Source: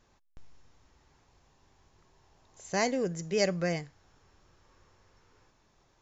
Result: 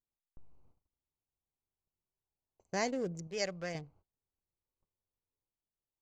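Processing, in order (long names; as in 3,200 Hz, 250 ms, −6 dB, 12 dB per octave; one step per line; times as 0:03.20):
adaptive Wiener filter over 25 samples
0:03.27–0:03.75: parametric band 230 Hz −8.5 dB 2.3 octaves
noise gate −58 dBFS, range −27 dB
level −5 dB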